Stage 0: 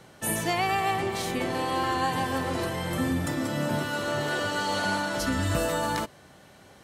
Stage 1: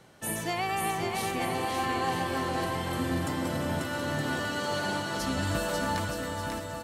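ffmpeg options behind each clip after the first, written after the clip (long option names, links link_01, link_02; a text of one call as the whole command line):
ffmpeg -i in.wav -af "aecho=1:1:540|918|1183|1368|1497:0.631|0.398|0.251|0.158|0.1,volume=-4.5dB" out.wav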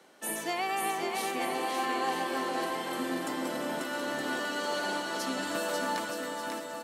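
ffmpeg -i in.wav -af "highpass=frequency=240:width=0.5412,highpass=frequency=240:width=1.3066,volume=-1dB" out.wav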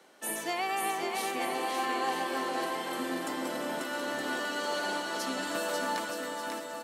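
ffmpeg -i in.wav -af "lowshelf=frequency=120:gain=-9.5" out.wav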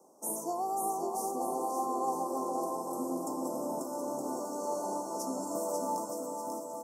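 ffmpeg -i in.wav -af "asuperstop=centerf=2500:order=12:qfactor=0.55" out.wav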